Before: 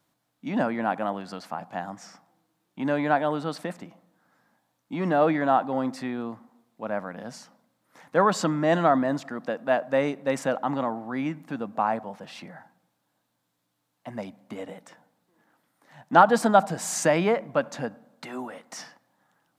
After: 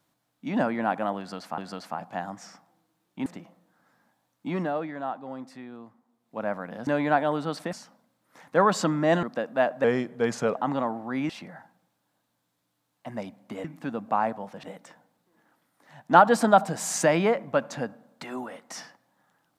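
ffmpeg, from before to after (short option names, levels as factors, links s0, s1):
-filter_complex "[0:a]asplit=13[s0][s1][s2][s3][s4][s5][s6][s7][s8][s9][s10][s11][s12];[s0]atrim=end=1.582[s13];[s1]atrim=start=1.178:end=2.862[s14];[s2]atrim=start=3.718:end=5.32,asetpts=PTS-STARTPTS,afade=t=out:st=1.272:d=0.33:c=qua:silence=0.281838[s15];[s3]atrim=start=5.32:end=6.5,asetpts=PTS-STARTPTS,volume=0.282[s16];[s4]atrim=start=6.5:end=7.332,asetpts=PTS-STARTPTS,afade=t=in:d=0.33:c=qua:silence=0.281838[s17];[s5]atrim=start=2.858:end=3.722[s18];[s6]atrim=start=7.328:end=8.832[s19];[s7]atrim=start=9.338:end=9.954[s20];[s8]atrim=start=9.95:end=10.58,asetpts=PTS-STARTPTS,asetrate=38367,aresample=44100,atrim=end_sample=31934,asetpts=PTS-STARTPTS[s21];[s9]atrim=start=10.576:end=11.312[s22];[s10]atrim=start=12.298:end=14.652[s23];[s11]atrim=start=11.308:end=12.302[s24];[s12]atrim=start=14.648[s25];[s13][s14]acrossfade=d=0.004:c1=hsin:c2=hsin[s26];[s15][s16][s17]concat=n=3:v=0:a=1[s27];[s26][s27]acrossfade=d=0.004:c1=hsin:c2=hsin[s28];[s28][s18]acrossfade=d=0.004:c1=hsin:c2=hsin[s29];[s29][s19]acrossfade=d=0.004:c1=hsin:c2=hsin[s30];[s30][s20]acrossfade=d=0.004:c1=hsin:c2=hsin[s31];[s31][s21]acrossfade=d=0.004:c1=hsin:c2=hsin[s32];[s32][s22]acrossfade=d=0.004:c1=hsin:c2=hsin[s33];[s33][s23]acrossfade=d=0.004:c1=hsin:c2=hsin[s34];[s34][s24]acrossfade=d=0.004:c1=hsin:c2=hsin[s35];[s35][s25]acrossfade=d=0.004:c1=hsin:c2=hsin"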